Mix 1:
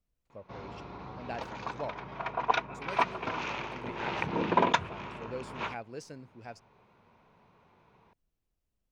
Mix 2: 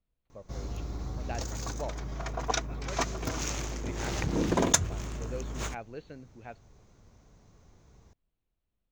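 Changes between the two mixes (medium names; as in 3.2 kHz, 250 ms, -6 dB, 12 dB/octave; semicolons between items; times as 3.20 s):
speech: add brick-wall FIR low-pass 4.5 kHz; background: remove cabinet simulation 180–3600 Hz, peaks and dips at 290 Hz -6 dB, 950 Hz +10 dB, 1.4 kHz +3 dB, 2.5 kHz +7 dB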